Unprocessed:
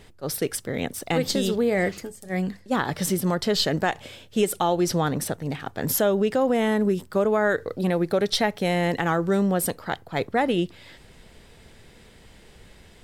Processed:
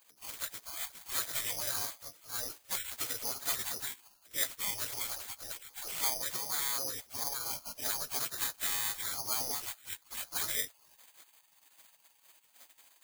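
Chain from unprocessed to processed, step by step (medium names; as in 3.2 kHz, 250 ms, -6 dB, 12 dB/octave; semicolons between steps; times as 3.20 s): frequency axis rescaled in octaves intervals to 83%; spectral gate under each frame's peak -20 dB weak; careless resampling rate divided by 8×, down filtered, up zero stuff; trim -2.5 dB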